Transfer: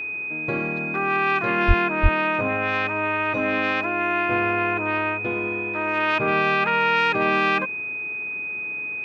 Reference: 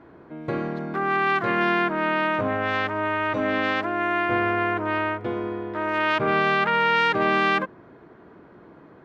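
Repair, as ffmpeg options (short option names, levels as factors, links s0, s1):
-filter_complex "[0:a]bandreject=f=423.6:t=h:w=4,bandreject=f=847.2:t=h:w=4,bandreject=f=1270.8:t=h:w=4,bandreject=f=1694.4:t=h:w=4,bandreject=f=2118:t=h:w=4,bandreject=f=2541.6:t=h:w=4,bandreject=f=2500:w=30,asplit=3[s0][s1][s2];[s0]afade=t=out:st=1.67:d=0.02[s3];[s1]highpass=f=140:w=0.5412,highpass=f=140:w=1.3066,afade=t=in:st=1.67:d=0.02,afade=t=out:st=1.79:d=0.02[s4];[s2]afade=t=in:st=1.79:d=0.02[s5];[s3][s4][s5]amix=inputs=3:normalize=0,asplit=3[s6][s7][s8];[s6]afade=t=out:st=2.02:d=0.02[s9];[s7]highpass=f=140:w=0.5412,highpass=f=140:w=1.3066,afade=t=in:st=2.02:d=0.02,afade=t=out:st=2.14:d=0.02[s10];[s8]afade=t=in:st=2.14:d=0.02[s11];[s9][s10][s11]amix=inputs=3:normalize=0"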